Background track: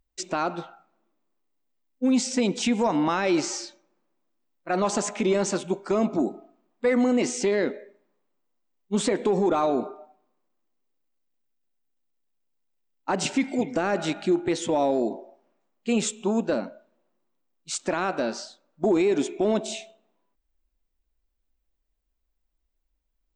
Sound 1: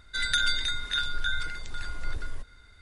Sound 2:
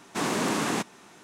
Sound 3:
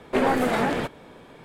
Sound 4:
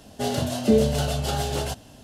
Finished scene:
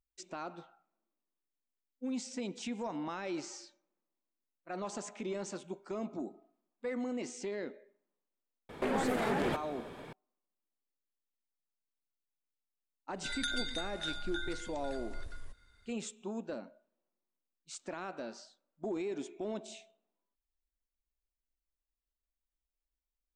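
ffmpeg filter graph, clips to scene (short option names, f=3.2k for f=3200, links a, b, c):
-filter_complex "[0:a]volume=-15.5dB[a];[3:a]acompressor=threshold=-28dB:ratio=6:attack=3.2:release=140:knee=1:detection=peak[b];[1:a]highshelf=f=8.1k:g=5.5[c];[b]atrim=end=1.44,asetpts=PTS-STARTPTS,volume=-1dB,afade=t=in:d=0.004:c=hsin,afade=t=out:st=1.436:d=0.004:c=hsin,adelay=8690[d];[c]atrim=end=2.81,asetpts=PTS-STARTPTS,volume=-11.5dB,afade=t=in:d=0.004:c=hsin,afade=t=out:st=2.806:d=0.004:c=hsin,adelay=13100[e];[a][d][e]amix=inputs=3:normalize=0"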